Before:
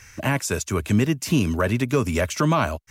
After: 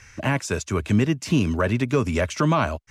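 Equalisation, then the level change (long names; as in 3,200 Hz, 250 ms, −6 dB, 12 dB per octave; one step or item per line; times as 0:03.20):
high-frequency loss of the air 56 metres
0.0 dB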